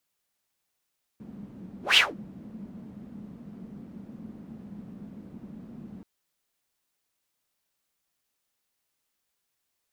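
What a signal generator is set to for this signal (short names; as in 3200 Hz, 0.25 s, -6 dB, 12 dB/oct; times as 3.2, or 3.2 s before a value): whoosh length 4.83 s, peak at 0.76, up 0.15 s, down 0.21 s, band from 210 Hz, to 3100 Hz, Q 5.5, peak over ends 26.5 dB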